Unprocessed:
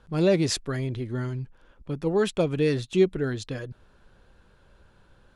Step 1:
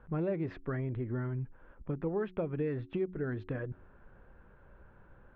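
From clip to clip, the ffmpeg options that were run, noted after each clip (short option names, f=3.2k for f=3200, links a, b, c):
-af "acompressor=threshold=-32dB:ratio=4,lowpass=f=2k:w=0.5412,lowpass=f=2k:w=1.3066,bandreject=f=91.7:t=h:w=4,bandreject=f=183.4:t=h:w=4,bandreject=f=275.1:t=h:w=4,bandreject=f=366.8:t=h:w=4"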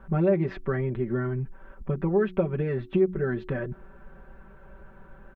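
-af "aecho=1:1:5.2:0.92,volume=6dB"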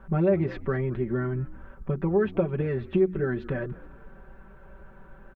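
-filter_complex "[0:a]asplit=4[a][b][c][d];[b]adelay=212,afreqshift=-70,volume=-19.5dB[e];[c]adelay=424,afreqshift=-140,volume=-27.2dB[f];[d]adelay=636,afreqshift=-210,volume=-35dB[g];[a][e][f][g]amix=inputs=4:normalize=0"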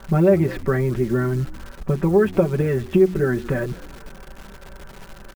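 -af "acrusher=bits=9:dc=4:mix=0:aa=0.000001,volume=7dB"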